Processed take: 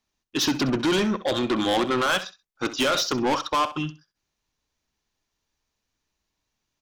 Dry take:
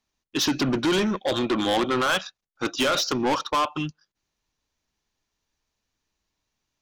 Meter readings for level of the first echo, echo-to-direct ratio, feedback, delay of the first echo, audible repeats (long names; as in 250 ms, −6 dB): −14.5 dB, −14.5 dB, 18%, 65 ms, 2